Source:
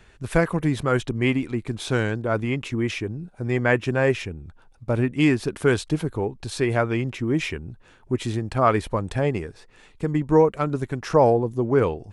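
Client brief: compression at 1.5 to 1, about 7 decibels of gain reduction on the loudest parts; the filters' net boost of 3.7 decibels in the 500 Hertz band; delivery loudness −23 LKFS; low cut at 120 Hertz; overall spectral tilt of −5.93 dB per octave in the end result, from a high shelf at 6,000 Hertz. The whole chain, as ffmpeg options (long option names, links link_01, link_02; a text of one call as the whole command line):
ffmpeg -i in.wav -af "highpass=120,equalizer=frequency=500:width_type=o:gain=4.5,highshelf=frequency=6000:gain=-6,acompressor=threshold=-28dB:ratio=1.5,volume=3.5dB" out.wav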